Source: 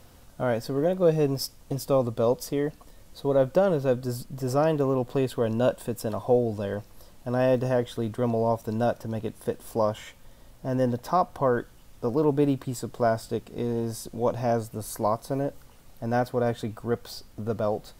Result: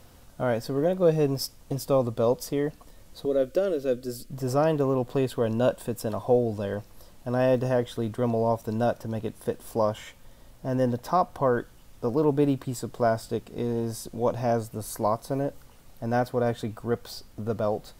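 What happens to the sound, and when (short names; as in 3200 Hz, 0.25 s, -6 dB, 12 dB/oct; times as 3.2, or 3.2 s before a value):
3.25–4.3 fixed phaser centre 370 Hz, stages 4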